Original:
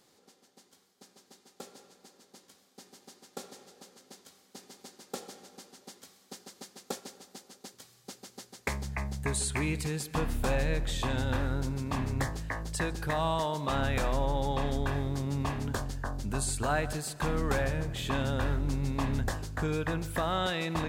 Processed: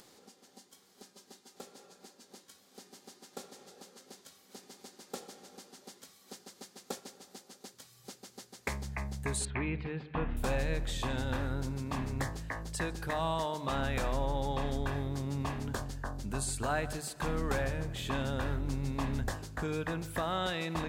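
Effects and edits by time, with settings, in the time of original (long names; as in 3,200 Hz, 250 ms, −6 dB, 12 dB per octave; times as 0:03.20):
0:09.45–0:10.37: low-pass filter 2,900 Hz 24 dB per octave
whole clip: noise reduction from a noise print of the clip's start 6 dB; mains-hum notches 50/100/150 Hz; upward compression, threshold −43 dBFS; level −3 dB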